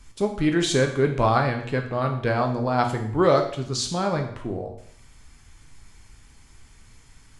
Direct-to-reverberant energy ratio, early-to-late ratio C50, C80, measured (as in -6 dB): 3.5 dB, 8.0 dB, 11.0 dB